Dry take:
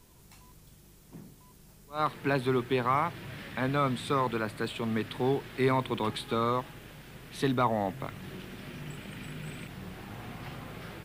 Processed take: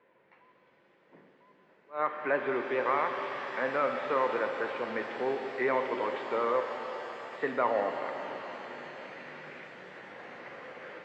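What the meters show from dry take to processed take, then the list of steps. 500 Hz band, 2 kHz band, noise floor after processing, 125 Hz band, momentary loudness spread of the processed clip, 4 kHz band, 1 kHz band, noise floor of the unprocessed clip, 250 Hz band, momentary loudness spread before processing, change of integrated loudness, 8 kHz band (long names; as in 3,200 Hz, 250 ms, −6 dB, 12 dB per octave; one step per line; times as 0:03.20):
+1.5 dB, +2.5 dB, −65 dBFS, −20.5 dB, 16 LU, −7.5 dB, −0.5 dB, −56 dBFS, −8.0 dB, 15 LU, −0.5 dB, below −10 dB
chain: pitch vibrato 6.9 Hz 41 cents
loudspeaker in its box 460–2,200 Hz, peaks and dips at 530 Hz +8 dB, 760 Hz −4 dB, 1,200 Hz −3 dB, 1,900 Hz +5 dB
reverb with rising layers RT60 4 s, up +7 semitones, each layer −8 dB, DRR 4.5 dB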